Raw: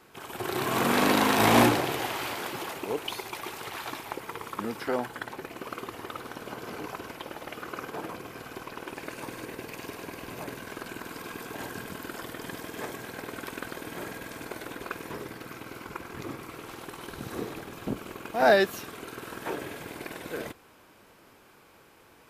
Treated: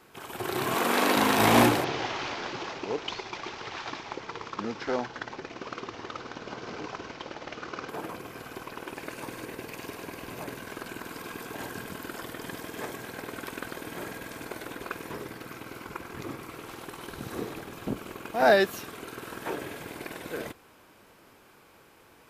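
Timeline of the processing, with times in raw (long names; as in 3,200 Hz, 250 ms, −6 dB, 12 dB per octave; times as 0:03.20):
0:00.74–0:01.17: high-pass filter 280 Hz
0:01.84–0:07.89: variable-slope delta modulation 32 kbit/s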